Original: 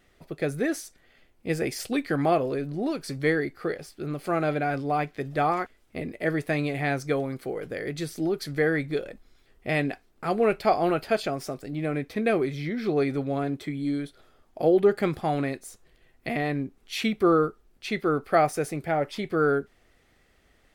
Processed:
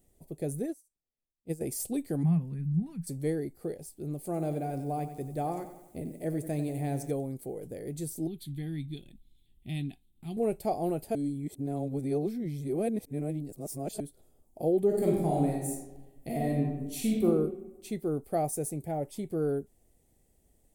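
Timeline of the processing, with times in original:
0.62–1.61 upward expander 2.5:1, over -42 dBFS
2.23–3.07 EQ curve 120 Hz 0 dB, 170 Hz +15 dB, 310 Hz -15 dB, 590 Hz -25 dB, 940 Hz -5 dB, 1900 Hz +2 dB, 4500 Hz -13 dB
4.25–7.11 lo-fi delay 92 ms, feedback 55%, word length 9-bit, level -11 dB
8.27–10.37 EQ curve 180 Hz 0 dB, 350 Hz -7 dB, 510 Hz -28 dB, 730 Hz -13 dB, 1500 Hz -10 dB, 3600 Hz +12 dB, 5300 Hz -14 dB, 11000 Hz -8 dB
11.15–14 reverse
14.86–17.25 reverb throw, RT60 1.1 s, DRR -3 dB
whole clip: EQ curve 170 Hz 0 dB, 850 Hz -7 dB, 1300 Hz -23 dB, 5000 Hz -10 dB, 8300 Hz +7 dB; gain -2.5 dB

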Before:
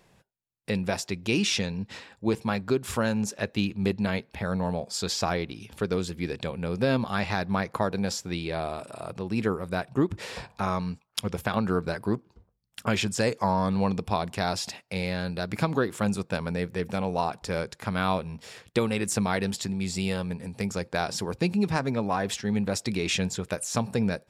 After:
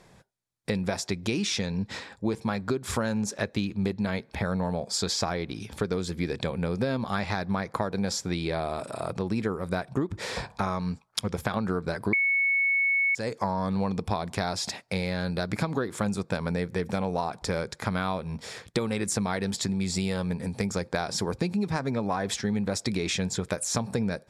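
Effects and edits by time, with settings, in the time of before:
12.13–13.15 bleep 2210 Hz -8.5 dBFS
whole clip: compressor, threshold -30 dBFS; LPF 11000 Hz 12 dB/oct; bell 2800 Hz -8.5 dB 0.21 oct; gain +5.5 dB

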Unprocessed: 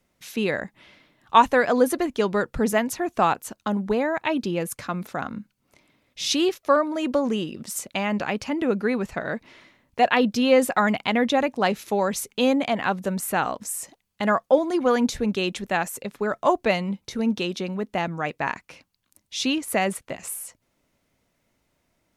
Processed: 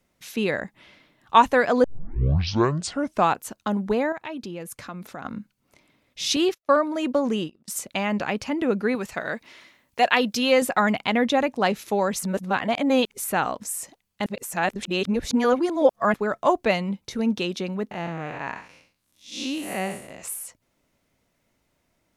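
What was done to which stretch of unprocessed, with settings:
1.84 tape start 1.43 s
4.12–5.25 compressor 2:1, threshold -38 dBFS
6.36–7.68 gate -32 dBFS, range -26 dB
8.95–10.62 tilt +2 dB/oct
12.19–13.24 reverse
14.26–16.14 reverse
17.91–20.22 time blur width 0.172 s

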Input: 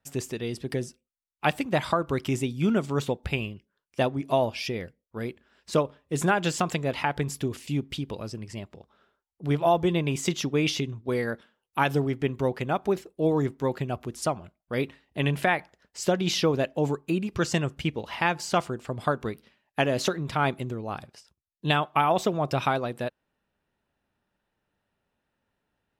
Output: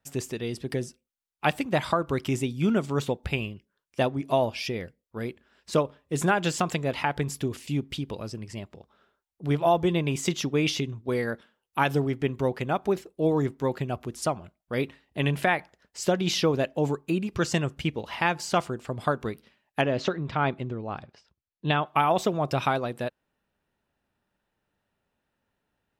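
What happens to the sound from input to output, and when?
19.81–21.86 air absorption 160 m

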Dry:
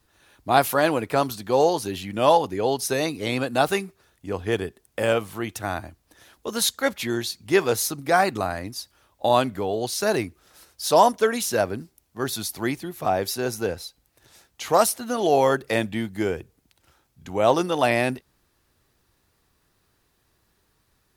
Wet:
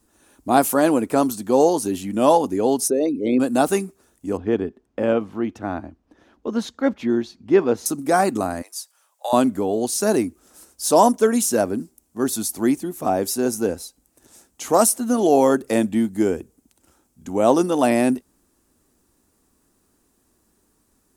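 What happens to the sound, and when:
2.88–3.4 formant sharpening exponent 2
4.37–7.86 air absorption 260 m
8.62–9.33 Bessel high-pass 960 Hz, order 8
whole clip: graphic EQ 125/250/2000/4000/8000 Hz -7/+11/-5/-7/+9 dB; gain +1 dB

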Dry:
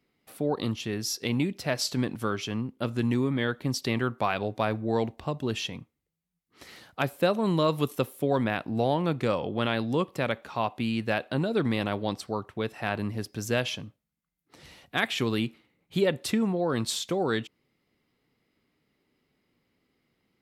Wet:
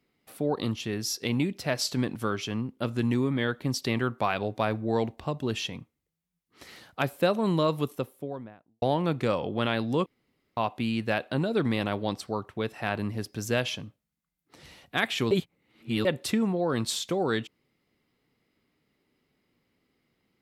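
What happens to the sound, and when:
7.44–8.82 studio fade out
10.06–10.57 room tone
15.31–16.05 reverse

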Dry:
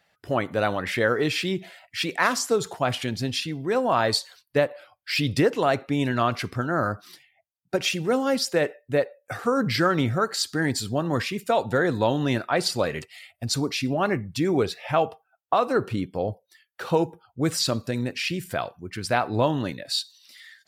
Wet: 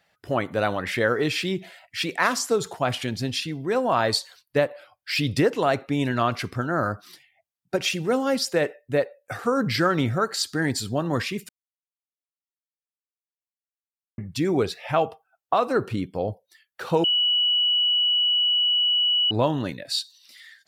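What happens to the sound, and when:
11.49–14.18 mute
17.04–19.31 bleep 2940 Hz -18 dBFS

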